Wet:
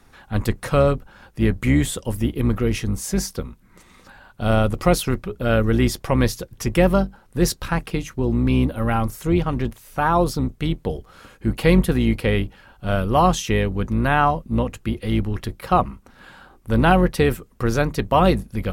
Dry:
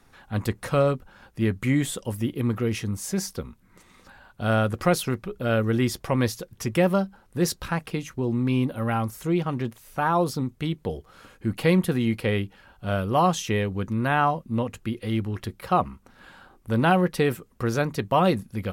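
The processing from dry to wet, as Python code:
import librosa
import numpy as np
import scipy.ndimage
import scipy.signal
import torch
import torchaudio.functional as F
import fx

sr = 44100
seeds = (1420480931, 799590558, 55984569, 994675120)

y = fx.octave_divider(x, sr, octaves=2, level_db=-4.0)
y = fx.peak_eq(y, sr, hz=1600.0, db=-9.0, octaves=0.31, at=(4.44, 4.94))
y = y * librosa.db_to_amplitude(4.0)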